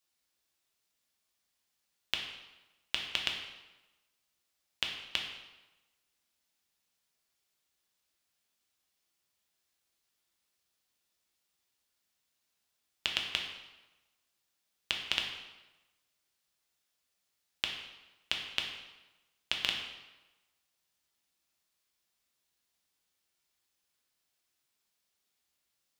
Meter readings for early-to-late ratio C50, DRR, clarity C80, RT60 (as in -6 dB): 4.5 dB, 0.5 dB, 7.0 dB, 1.1 s